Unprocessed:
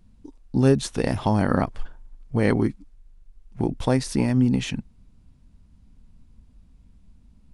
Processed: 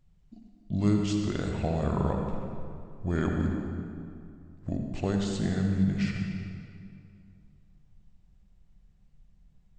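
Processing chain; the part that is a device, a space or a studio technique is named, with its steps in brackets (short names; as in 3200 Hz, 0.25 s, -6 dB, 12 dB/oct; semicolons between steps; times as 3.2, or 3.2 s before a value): slowed and reverbed (varispeed -23%; reverb RT60 2.5 s, pre-delay 54 ms, DRR 2 dB); gain -8.5 dB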